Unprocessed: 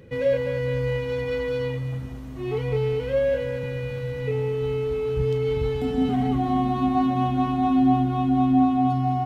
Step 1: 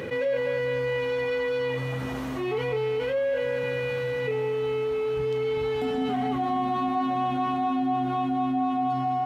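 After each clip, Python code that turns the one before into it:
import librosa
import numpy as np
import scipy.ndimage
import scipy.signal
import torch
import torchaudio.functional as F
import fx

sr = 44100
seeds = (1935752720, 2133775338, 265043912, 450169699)

y = fx.highpass(x, sr, hz=920.0, slope=6)
y = fx.high_shelf(y, sr, hz=2900.0, db=-9.0)
y = fx.env_flatten(y, sr, amount_pct=70)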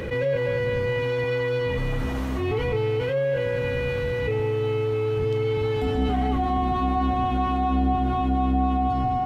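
y = fx.octave_divider(x, sr, octaves=2, level_db=3.0)
y = y * librosa.db_to_amplitude(1.5)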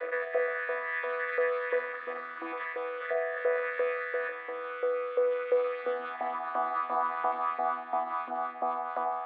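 y = fx.chord_vocoder(x, sr, chord='bare fifth', root=52)
y = fx.filter_lfo_highpass(y, sr, shape='saw_up', hz=2.9, low_hz=670.0, high_hz=1700.0, q=1.2)
y = fx.cabinet(y, sr, low_hz=330.0, low_slope=24, high_hz=3500.0, hz=(340.0, 530.0, 860.0, 1200.0, 1800.0, 2900.0), db=(3, 4, -9, 9, 7, -7))
y = y * librosa.db_to_amplitude(2.0)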